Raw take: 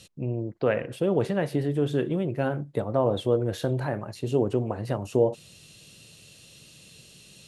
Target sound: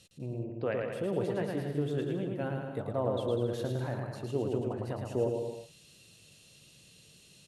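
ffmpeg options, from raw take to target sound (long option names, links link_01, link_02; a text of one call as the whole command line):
ffmpeg -i in.wav -af "aecho=1:1:110|198|268.4|324.7|369.8:0.631|0.398|0.251|0.158|0.1,volume=-9dB" out.wav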